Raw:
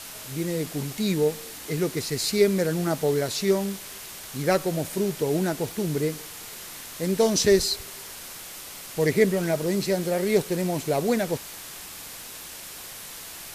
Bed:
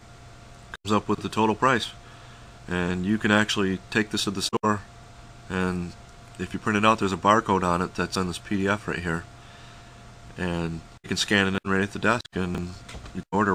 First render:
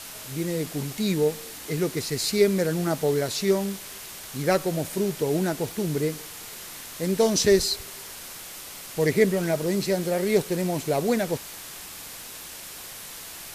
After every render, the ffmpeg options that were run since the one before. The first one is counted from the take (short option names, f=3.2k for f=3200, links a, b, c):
-af anull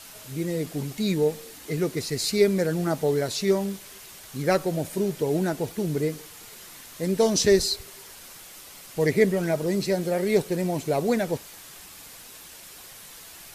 -af "afftdn=nr=6:nf=-40"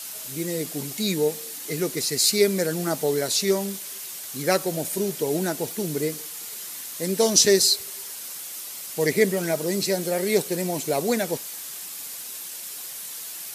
-af "highpass=170,highshelf=f=4.1k:g=12"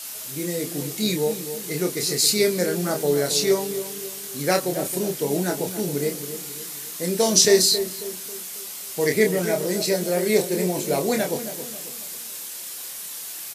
-filter_complex "[0:a]asplit=2[a][b];[b]adelay=28,volume=-5dB[c];[a][c]amix=inputs=2:normalize=0,asplit=2[d][e];[e]adelay=271,lowpass=f=1k:p=1,volume=-9.5dB,asplit=2[f][g];[g]adelay=271,lowpass=f=1k:p=1,volume=0.45,asplit=2[h][i];[i]adelay=271,lowpass=f=1k:p=1,volume=0.45,asplit=2[j][k];[k]adelay=271,lowpass=f=1k:p=1,volume=0.45,asplit=2[l][m];[m]adelay=271,lowpass=f=1k:p=1,volume=0.45[n];[d][f][h][j][l][n]amix=inputs=6:normalize=0"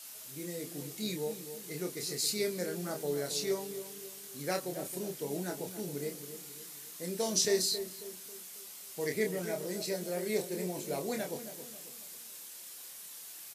-af "volume=-13dB"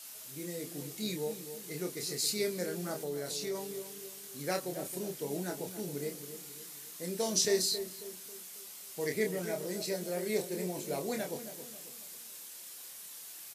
-filter_complex "[0:a]asplit=3[a][b][c];[a]afade=t=out:st=3:d=0.02[d];[b]acompressor=threshold=-34dB:ratio=2.5:attack=3.2:release=140:knee=1:detection=peak,afade=t=in:st=3:d=0.02,afade=t=out:st=3.54:d=0.02[e];[c]afade=t=in:st=3.54:d=0.02[f];[d][e][f]amix=inputs=3:normalize=0"